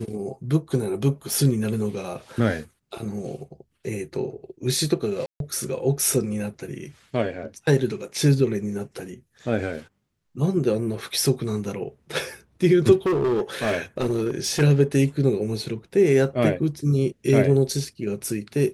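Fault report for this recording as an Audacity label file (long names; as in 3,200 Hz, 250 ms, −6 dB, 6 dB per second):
1.330000	1.330000	click
5.260000	5.400000	drop-out 142 ms
13.060000	14.620000	clipping −18.5 dBFS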